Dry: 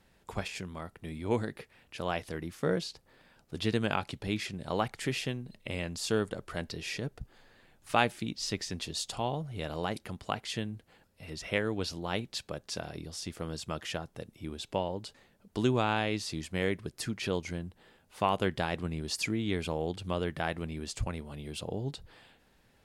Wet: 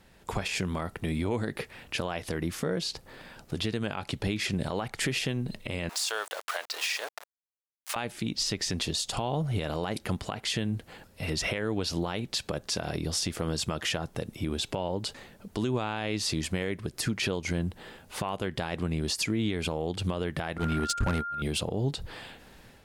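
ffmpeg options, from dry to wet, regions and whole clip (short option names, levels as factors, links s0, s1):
-filter_complex "[0:a]asettb=1/sr,asplit=3[s0][s1][s2];[s0]atrim=end=5.894[s3];[s1]atrim=start=5.89:end=7.96,asetpts=PTS-STARTPTS,afade=t=in:d=0.004:c=qsin,afade=t=out:st=2.066:d=0.004:c=qsin,aeval=exprs='val(0)*gte(abs(val(0)),0.00596)':c=same,highpass=f=660:w=0.5412,highpass=f=660:w=1.3066[s4];[s2]atrim=start=7.956[s5];[s3][s4]acrossfade=d=0.004:c1=hsin:c2=qsin[s6];[s6][s5]acrossfade=d=0.004:c1=qsin:c2=hsin,asettb=1/sr,asplit=3[s7][s8][s9];[s7]atrim=end=20.584[s10];[s8]atrim=start=20.58:end=21.42,asetpts=PTS-STARTPTS,afade=t=in:d=0.004:c=qsin,afade=t=out:st=0.836:d=0.004:c=qsin,agate=range=0.00398:threshold=0.01:ratio=16:release=100:detection=peak,aeval=exprs='val(0)+0.00562*sin(2*PI*1400*n/s)':c=same,asoftclip=type=hard:threshold=0.0224[s11];[s9]atrim=start=21.416[s12];[s10][s11]acrossfade=d=0.004:c1=hsin:c2=qsin[s13];[s13][s12]acrossfade=d=0.004:c1=qsin:c2=hsin,acompressor=threshold=0.0141:ratio=6,alimiter=level_in=2.82:limit=0.0631:level=0:latency=1:release=82,volume=0.355,dynaudnorm=f=180:g=3:m=2.24,volume=2.11"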